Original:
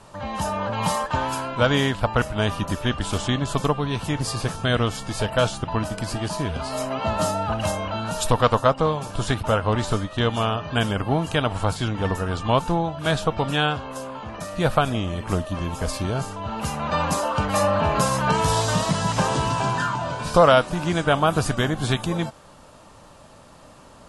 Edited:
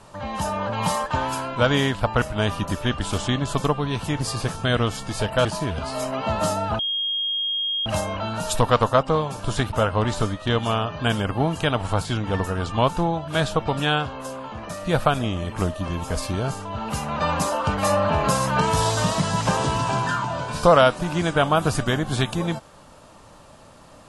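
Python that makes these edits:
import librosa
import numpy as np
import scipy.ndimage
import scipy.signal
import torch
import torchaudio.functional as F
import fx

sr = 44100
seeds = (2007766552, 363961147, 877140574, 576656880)

y = fx.edit(x, sr, fx.cut(start_s=5.45, length_s=0.78),
    fx.insert_tone(at_s=7.57, length_s=1.07, hz=3250.0, db=-22.0), tone=tone)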